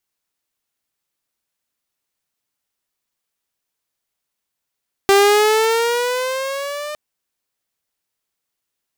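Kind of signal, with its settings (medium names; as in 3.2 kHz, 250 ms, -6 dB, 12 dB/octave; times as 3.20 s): gliding synth tone saw, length 1.86 s, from 392 Hz, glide +7.5 st, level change -17 dB, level -6 dB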